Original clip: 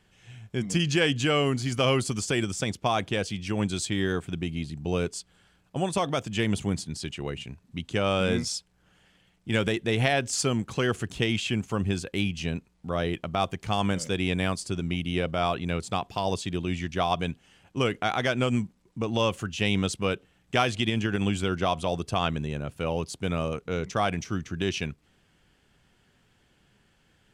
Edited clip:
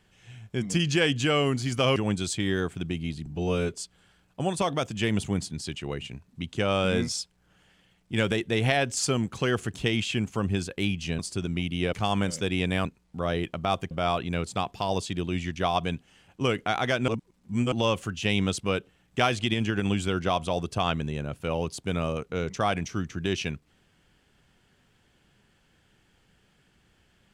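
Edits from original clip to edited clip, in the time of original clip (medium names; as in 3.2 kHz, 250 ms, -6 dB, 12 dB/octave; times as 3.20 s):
1.96–3.48 s: delete
4.78–5.10 s: stretch 1.5×
12.55–13.61 s: swap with 14.53–15.27 s
18.44–19.08 s: reverse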